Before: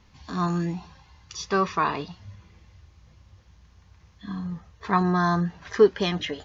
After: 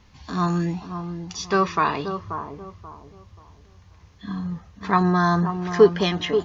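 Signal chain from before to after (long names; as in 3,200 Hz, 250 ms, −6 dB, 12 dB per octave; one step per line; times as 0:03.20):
bucket-brigade delay 533 ms, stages 4,096, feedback 30%, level −8.5 dB
level +3 dB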